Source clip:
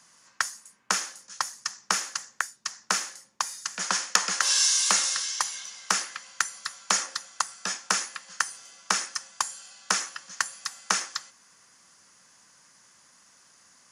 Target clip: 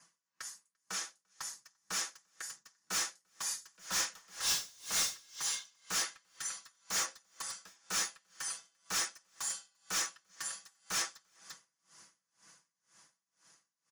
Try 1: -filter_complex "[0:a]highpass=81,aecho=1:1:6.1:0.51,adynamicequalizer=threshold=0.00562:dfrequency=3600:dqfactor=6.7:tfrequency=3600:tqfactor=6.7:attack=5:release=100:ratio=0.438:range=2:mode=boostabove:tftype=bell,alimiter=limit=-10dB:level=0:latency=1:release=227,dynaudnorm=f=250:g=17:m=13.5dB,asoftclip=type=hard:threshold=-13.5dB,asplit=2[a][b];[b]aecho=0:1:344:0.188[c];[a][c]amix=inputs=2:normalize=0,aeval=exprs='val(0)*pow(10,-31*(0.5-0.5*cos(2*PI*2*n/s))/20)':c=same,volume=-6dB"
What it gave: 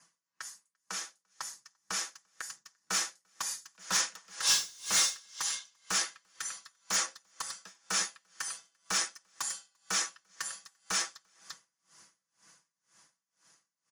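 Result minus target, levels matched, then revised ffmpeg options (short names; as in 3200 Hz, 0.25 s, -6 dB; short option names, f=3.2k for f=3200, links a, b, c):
hard clip: distortion -6 dB
-filter_complex "[0:a]highpass=81,aecho=1:1:6.1:0.51,adynamicequalizer=threshold=0.00562:dfrequency=3600:dqfactor=6.7:tfrequency=3600:tqfactor=6.7:attack=5:release=100:ratio=0.438:range=2:mode=boostabove:tftype=bell,alimiter=limit=-10dB:level=0:latency=1:release=227,dynaudnorm=f=250:g=17:m=13.5dB,asoftclip=type=hard:threshold=-22dB,asplit=2[a][b];[b]aecho=0:1:344:0.188[c];[a][c]amix=inputs=2:normalize=0,aeval=exprs='val(0)*pow(10,-31*(0.5-0.5*cos(2*PI*2*n/s))/20)':c=same,volume=-6dB"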